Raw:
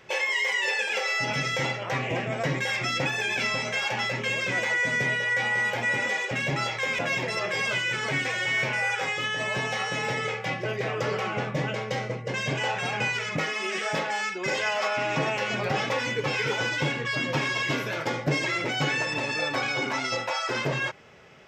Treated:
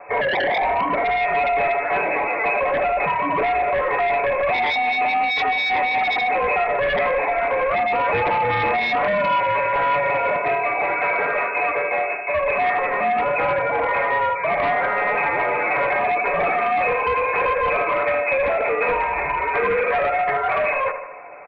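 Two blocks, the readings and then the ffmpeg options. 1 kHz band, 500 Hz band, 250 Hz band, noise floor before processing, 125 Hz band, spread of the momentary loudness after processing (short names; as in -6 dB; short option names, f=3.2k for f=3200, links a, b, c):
+13.0 dB, +10.5 dB, -0.5 dB, -34 dBFS, -6.5 dB, 2 LU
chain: -filter_complex "[0:a]asoftclip=type=tanh:threshold=-25dB,aecho=1:1:7.1:0.42,asplit=2[a][b];[b]aecho=0:1:77|154|231|308|385|462|539:0.299|0.17|0.097|0.0553|0.0315|0.018|0.0102[c];[a][c]amix=inputs=2:normalize=0,lowpass=f=2.3k:t=q:w=0.5098,lowpass=f=2.3k:t=q:w=0.6013,lowpass=f=2.3k:t=q:w=0.9,lowpass=f=2.3k:t=q:w=2.563,afreqshift=-2700,acrossover=split=400|890[d][e][f];[e]aeval=exprs='0.0891*sin(PI/2*5.62*val(0)/0.0891)':c=same[g];[d][g][f]amix=inputs=3:normalize=0,volume=3dB"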